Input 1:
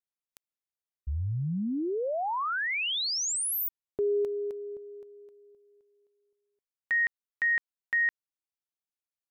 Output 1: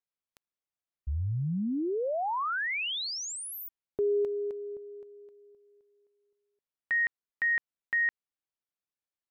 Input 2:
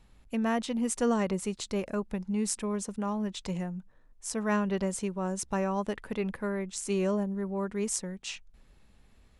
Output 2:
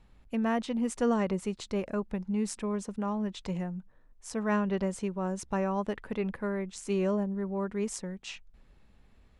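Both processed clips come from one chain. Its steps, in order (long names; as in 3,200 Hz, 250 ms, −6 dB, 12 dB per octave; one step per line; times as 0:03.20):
high-shelf EQ 5,300 Hz −11 dB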